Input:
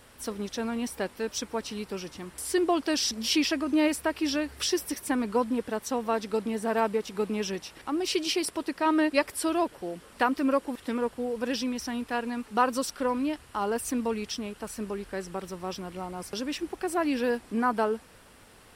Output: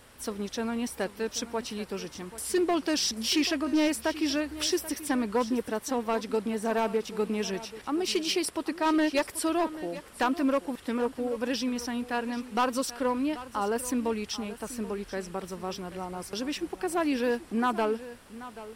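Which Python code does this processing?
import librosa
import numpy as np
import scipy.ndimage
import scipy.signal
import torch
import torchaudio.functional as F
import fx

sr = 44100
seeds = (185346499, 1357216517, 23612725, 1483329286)

y = np.clip(x, -10.0 ** (-20.0 / 20.0), 10.0 ** (-20.0 / 20.0))
y = y + 10.0 ** (-15.5 / 20.0) * np.pad(y, (int(784 * sr / 1000.0), 0))[:len(y)]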